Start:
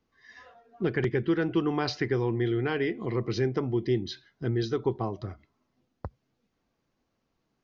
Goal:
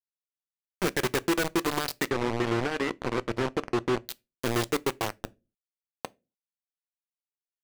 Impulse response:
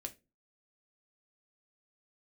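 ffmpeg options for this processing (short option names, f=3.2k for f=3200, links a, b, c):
-filter_complex "[0:a]highpass=f=240:p=1,acompressor=threshold=-30dB:ratio=3,acrusher=bits=4:mix=0:aa=0.000001,asettb=1/sr,asplit=3[a][b][c];[a]atrim=end=2.084[d];[b]atrim=start=2.08:end=4,asetpts=PTS-STARTPTS,afade=t=in:d=0.004:c=qsin,afade=t=out:st=1.916:d=0.004:c=qsin,adynamicsmooth=sensitivity=3.5:basefreq=800[e];[c]atrim=start=3.996[f];[d][e]acrossfade=d=0.004:c1=hsin:c2=qsin[g];[g][f]acrossfade=d=0.004:c1=qsin:c2=hsin,asplit=2[h][i];[1:a]atrim=start_sample=2205[j];[i][j]afir=irnorm=-1:irlink=0,volume=-6dB[k];[h][k]amix=inputs=2:normalize=0,volume=2dB"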